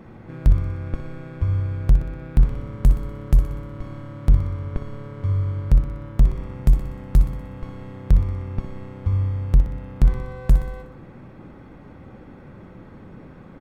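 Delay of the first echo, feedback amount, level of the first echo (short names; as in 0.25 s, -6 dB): 61 ms, 57%, -10.0 dB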